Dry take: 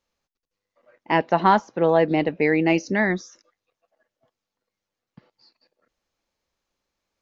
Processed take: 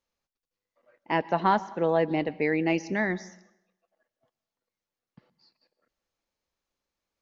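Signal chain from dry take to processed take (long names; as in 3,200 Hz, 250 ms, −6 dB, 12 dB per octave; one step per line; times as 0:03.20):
dense smooth reverb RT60 0.81 s, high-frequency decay 0.8×, pre-delay 105 ms, DRR 19.5 dB
level −6 dB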